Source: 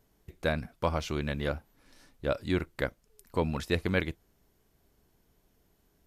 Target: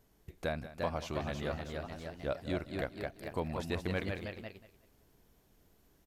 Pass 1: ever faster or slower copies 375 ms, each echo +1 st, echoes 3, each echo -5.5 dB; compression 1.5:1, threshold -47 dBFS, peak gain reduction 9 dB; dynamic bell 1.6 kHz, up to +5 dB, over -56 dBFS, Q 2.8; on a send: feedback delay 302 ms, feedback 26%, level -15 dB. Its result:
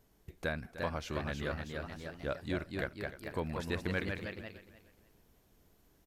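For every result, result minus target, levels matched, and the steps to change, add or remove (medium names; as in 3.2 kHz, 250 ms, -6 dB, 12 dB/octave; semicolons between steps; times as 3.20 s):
echo 116 ms late; 2 kHz band +3.5 dB
change: feedback delay 186 ms, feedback 26%, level -15 dB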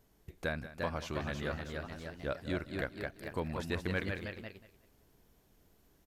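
2 kHz band +3.5 dB
change: dynamic bell 710 Hz, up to +5 dB, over -56 dBFS, Q 2.8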